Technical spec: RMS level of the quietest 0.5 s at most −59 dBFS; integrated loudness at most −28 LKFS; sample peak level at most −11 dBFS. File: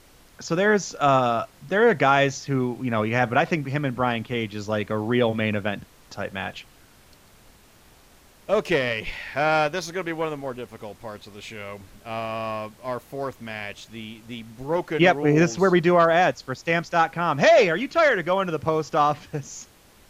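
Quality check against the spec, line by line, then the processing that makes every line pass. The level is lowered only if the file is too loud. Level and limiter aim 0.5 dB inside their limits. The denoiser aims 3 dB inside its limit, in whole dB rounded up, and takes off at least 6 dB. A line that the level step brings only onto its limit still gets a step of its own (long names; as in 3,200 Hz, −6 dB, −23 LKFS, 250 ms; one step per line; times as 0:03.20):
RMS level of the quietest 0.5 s −53 dBFS: out of spec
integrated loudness −22.5 LKFS: out of spec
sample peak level −5.0 dBFS: out of spec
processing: broadband denoise 6 dB, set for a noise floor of −53 dBFS
level −6 dB
brickwall limiter −11.5 dBFS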